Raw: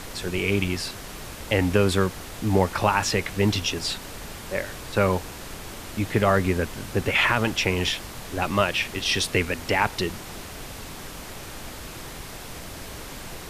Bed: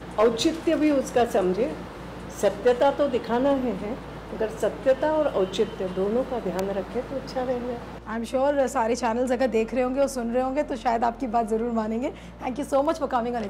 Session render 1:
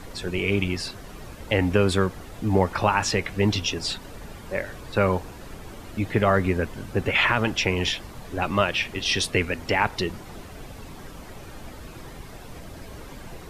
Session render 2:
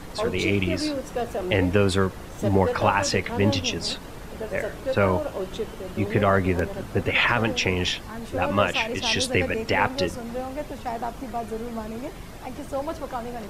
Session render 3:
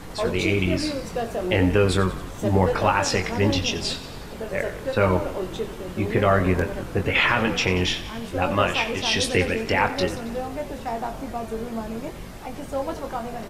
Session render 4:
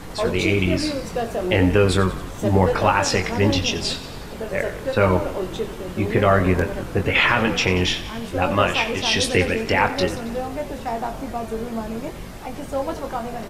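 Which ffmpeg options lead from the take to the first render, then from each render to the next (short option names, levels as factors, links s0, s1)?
-af "afftdn=nr=10:nf=-39"
-filter_complex "[1:a]volume=0.447[s0];[0:a][s0]amix=inputs=2:normalize=0"
-filter_complex "[0:a]asplit=2[s0][s1];[s1]adelay=22,volume=0.447[s2];[s0][s2]amix=inputs=2:normalize=0,asplit=8[s3][s4][s5][s6][s7][s8][s9][s10];[s4]adelay=91,afreqshift=-46,volume=0.2[s11];[s5]adelay=182,afreqshift=-92,volume=0.127[s12];[s6]adelay=273,afreqshift=-138,volume=0.0813[s13];[s7]adelay=364,afreqshift=-184,volume=0.0525[s14];[s8]adelay=455,afreqshift=-230,volume=0.0335[s15];[s9]adelay=546,afreqshift=-276,volume=0.0214[s16];[s10]adelay=637,afreqshift=-322,volume=0.0136[s17];[s3][s11][s12][s13][s14][s15][s16][s17]amix=inputs=8:normalize=0"
-af "volume=1.33"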